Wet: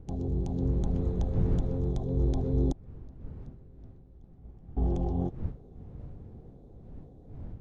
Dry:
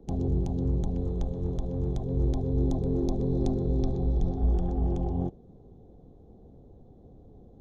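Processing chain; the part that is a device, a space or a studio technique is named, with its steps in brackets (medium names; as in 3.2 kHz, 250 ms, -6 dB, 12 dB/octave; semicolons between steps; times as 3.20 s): 2.72–4.77 s: gate -18 dBFS, range -30 dB; smartphone video outdoors (wind noise 110 Hz -37 dBFS; level rider gain up to 4 dB; trim -4.5 dB; AAC 48 kbps 24 kHz)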